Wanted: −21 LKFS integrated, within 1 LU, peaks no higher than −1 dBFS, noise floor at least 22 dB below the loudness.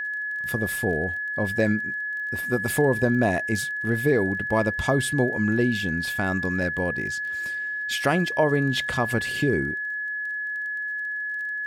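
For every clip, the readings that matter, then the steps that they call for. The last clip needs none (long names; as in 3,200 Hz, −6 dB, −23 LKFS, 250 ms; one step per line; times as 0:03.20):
crackle rate 21 per second; interfering tone 1,700 Hz; level of the tone −27 dBFS; integrated loudness −24.5 LKFS; sample peak −7.5 dBFS; target loudness −21.0 LKFS
→ click removal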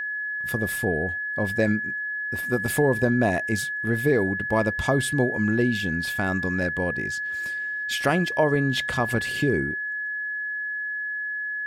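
crackle rate 0 per second; interfering tone 1,700 Hz; level of the tone −27 dBFS
→ notch filter 1,700 Hz, Q 30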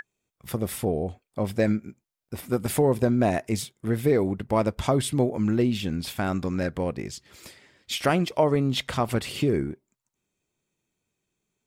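interfering tone none found; integrated loudness −26.0 LKFS; sample peak −7.5 dBFS; target loudness −21.0 LKFS
→ level +5 dB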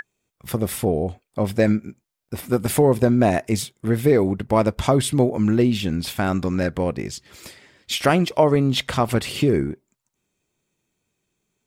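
integrated loudness −21.0 LKFS; sample peak −2.5 dBFS; background noise floor −79 dBFS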